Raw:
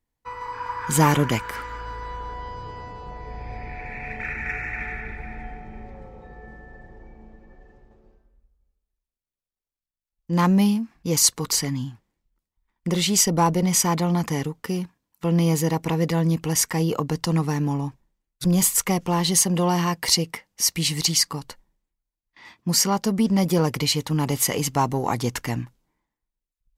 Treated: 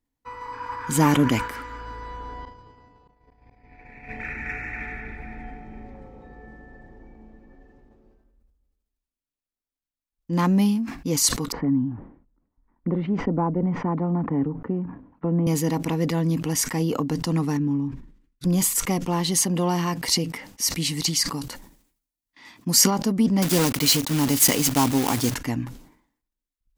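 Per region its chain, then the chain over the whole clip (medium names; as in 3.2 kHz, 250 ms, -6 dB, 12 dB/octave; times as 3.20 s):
2.45–4.09 s: expander -28 dBFS + slow attack 398 ms
11.52–15.47 s: Bessel low-pass 1 kHz, order 4 + three bands compressed up and down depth 40%
17.57–18.44 s: low-pass 1.2 kHz 6 dB/octave + peaking EQ 690 Hz -14 dB 1 oct
21.33–22.91 s: high-pass 48 Hz 6 dB/octave + treble shelf 4.5 kHz +8.5 dB + decay stretcher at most 96 dB/s
23.42–25.35 s: block-companded coder 3-bit + treble shelf 2.8 kHz +8 dB
whole clip: peaking EQ 270 Hz +11.5 dB 0.35 oct; decay stretcher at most 96 dB/s; trim -3 dB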